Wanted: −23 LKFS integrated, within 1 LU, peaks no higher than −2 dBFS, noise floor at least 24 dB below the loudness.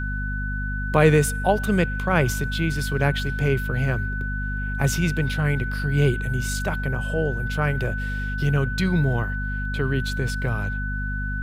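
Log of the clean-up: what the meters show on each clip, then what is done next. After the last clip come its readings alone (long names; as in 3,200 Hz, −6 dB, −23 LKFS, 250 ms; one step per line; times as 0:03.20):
mains hum 50 Hz; hum harmonics up to 250 Hz; level of the hum −25 dBFS; interfering tone 1,500 Hz; level of the tone −30 dBFS; integrated loudness −24.0 LKFS; sample peak −3.0 dBFS; target loudness −23.0 LKFS
→ hum removal 50 Hz, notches 5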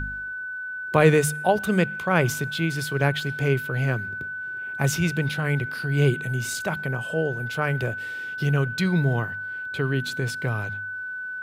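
mains hum none found; interfering tone 1,500 Hz; level of the tone −30 dBFS
→ notch filter 1,500 Hz, Q 30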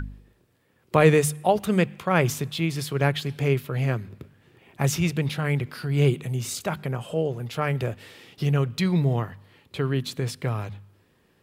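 interfering tone none found; integrated loudness −25.0 LKFS; sample peak −4.5 dBFS; target loudness −23.0 LKFS
→ level +2 dB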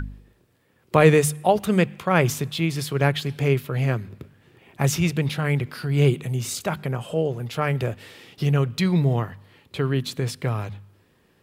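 integrated loudness −23.0 LKFS; sample peak −2.5 dBFS; background noise floor −62 dBFS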